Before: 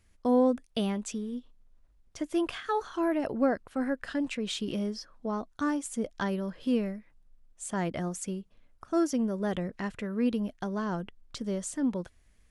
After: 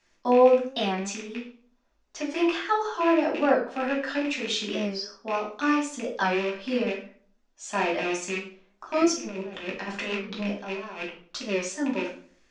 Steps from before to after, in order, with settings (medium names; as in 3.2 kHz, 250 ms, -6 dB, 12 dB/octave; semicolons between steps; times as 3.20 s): rattle on loud lows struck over -37 dBFS, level -28 dBFS; three-band isolator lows -22 dB, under 310 Hz, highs -13 dB, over 5 kHz; 9.02–11.03 s: compressor with a negative ratio -41 dBFS, ratio -0.5; resonant low-pass 6.4 kHz, resonance Q 3; reverberation RT60 0.50 s, pre-delay 5 ms, DRR -4 dB; warped record 45 rpm, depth 100 cents